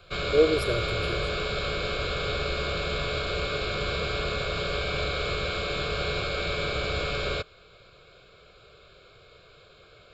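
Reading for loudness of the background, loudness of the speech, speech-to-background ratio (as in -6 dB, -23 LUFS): -29.0 LUFS, -27.5 LUFS, 1.5 dB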